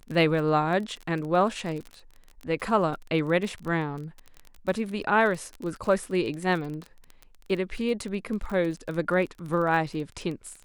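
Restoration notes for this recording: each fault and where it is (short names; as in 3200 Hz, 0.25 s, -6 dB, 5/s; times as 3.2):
crackle 26/s -32 dBFS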